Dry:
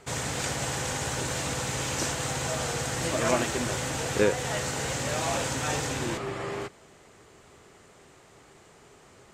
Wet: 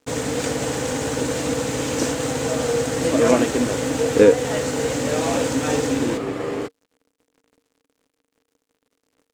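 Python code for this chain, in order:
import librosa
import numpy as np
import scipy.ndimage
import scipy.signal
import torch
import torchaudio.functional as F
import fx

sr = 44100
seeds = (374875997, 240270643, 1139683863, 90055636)

y = np.sign(x) * np.maximum(np.abs(x) - 10.0 ** (-47.5 / 20.0), 0.0)
y = fx.small_body(y, sr, hz=(280.0, 460.0), ring_ms=65, db=16)
y = y * librosa.db_to_amplitude(3.5)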